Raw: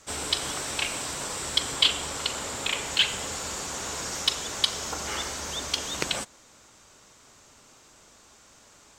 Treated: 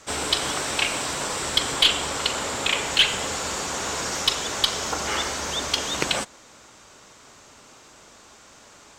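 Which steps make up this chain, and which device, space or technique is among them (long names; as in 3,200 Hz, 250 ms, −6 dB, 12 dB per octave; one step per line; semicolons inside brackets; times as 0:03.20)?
tube preamp driven hard (tube saturation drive 15 dB, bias 0.25; low-shelf EQ 160 Hz −5 dB; high-shelf EQ 6,100 Hz −7 dB)
level +8 dB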